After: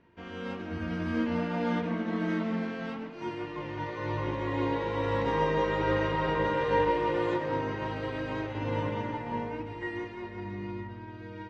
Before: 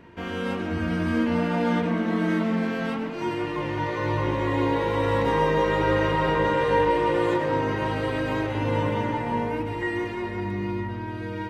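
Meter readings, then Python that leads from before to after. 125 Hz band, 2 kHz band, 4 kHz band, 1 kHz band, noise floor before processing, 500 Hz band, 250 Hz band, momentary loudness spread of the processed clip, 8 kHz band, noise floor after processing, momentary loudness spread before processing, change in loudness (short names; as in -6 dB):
-7.0 dB, -6.5 dB, -6.5 dB, -6.0 dB, -32 dBFS, -6.0 dB, -6.5 dB, 11 LU, n/a, -43 dBFS, 7 LU, -6.0 dB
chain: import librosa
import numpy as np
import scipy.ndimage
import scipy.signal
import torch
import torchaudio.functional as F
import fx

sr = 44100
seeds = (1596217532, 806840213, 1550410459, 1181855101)

y = scipy.signal.sosfilt(scipy.signal.butter(4, 6500.0, 'lowpass', fs=sr, output='sos'), x)
y = fx.upward_expand(y, sr, threshold_db=-38.0, expansion=1.5)
y = F.gain(torch.from_numpy(y), -4.0).numpy()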